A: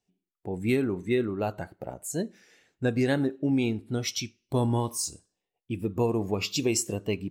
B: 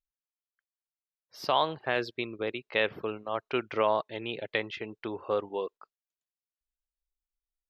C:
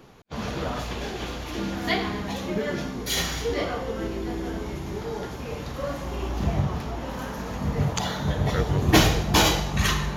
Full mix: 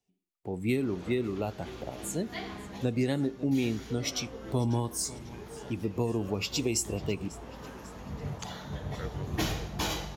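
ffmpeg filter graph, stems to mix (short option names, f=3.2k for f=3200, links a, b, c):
-filter_complex "[0:a]bandreject=f=1.6k:w=6.6,volume=-2dB,asplit=3[a][b][c];[b]volume=-20dB[d];[1:a]acompressor=threshold=-34dB:ratio=6,aeval=exprs='val(0)*sin(2*PI*1500*n/s+1500*0.55/0.28*sin(2*PI*0.28*n/s))':c=same,adelay=2300,volume=-18dB[e];[2:a]adelay=450,volume=-12.5dB[f];[c]apad=whole_len=468264[g];[f][g]sidechaincompress=threshold=-34dB:ratio=4:attack=45:release=366[h];[d]aecho=0:1:545|1090|1635|2180|2725|3270|3815|4360:1|0.53|0.281|0.149|0.0789|0.0418|0.0222|0.0117[i];[a][e][h][i]amix=inputs=4:normalize=0,acrossover=split=290|3000[j][k][l];[k]acompressor=threshold=-30dB:ratio=6[m];[j][m][l]amix=inputs=3:normalize=0"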